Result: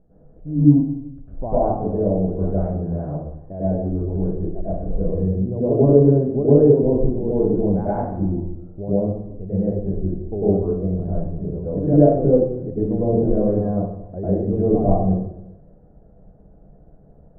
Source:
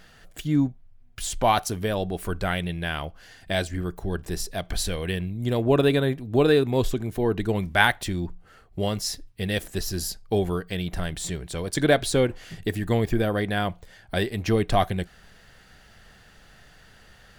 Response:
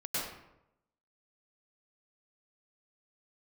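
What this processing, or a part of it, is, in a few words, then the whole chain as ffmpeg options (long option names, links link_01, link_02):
next room: -filter_complex "[0:a]lowpass=frequency=610:width=0.5412,lowpass=frequency=610:width=1.3066[link_01];[1:a]atrim=start_sample=2205[link_02];[link_01][link_02]afir=irnorm=-1:irlink=0,volume=1.5dB"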